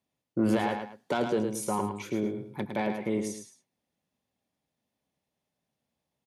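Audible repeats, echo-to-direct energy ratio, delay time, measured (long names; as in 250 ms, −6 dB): 2, −6.0 dB, 108 ms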